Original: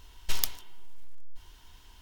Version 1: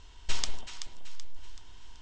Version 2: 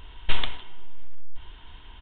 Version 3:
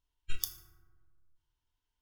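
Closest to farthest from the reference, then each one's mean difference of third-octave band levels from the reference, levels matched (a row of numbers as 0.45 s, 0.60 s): 1, 2, 3; 8.0 dB, 11.0 dB, 15.0 dB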